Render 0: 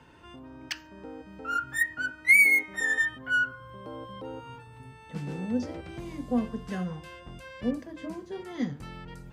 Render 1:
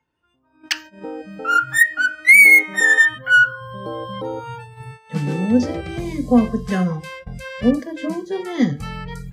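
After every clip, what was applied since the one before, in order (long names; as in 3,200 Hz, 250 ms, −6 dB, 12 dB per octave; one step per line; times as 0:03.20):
noise reduction from a noise print of the clip's start 20 dB
noise gate −49 dBFS, range −14 dB
boost into a limiter +14 dB
level −1 dB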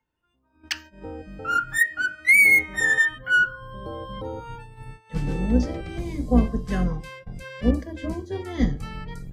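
sub-octave generator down 2 octaves, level +1 dB
level −6.5 dB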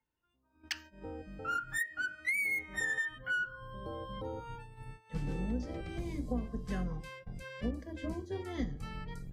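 downward compressor 6 to 1, threshold −24 dBFS, peak gain reduction 11.5 dB
level −7.5 dB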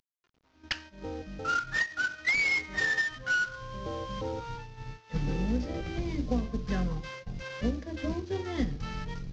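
variable-slope delta modulation 32 kbit/s
level +6 dB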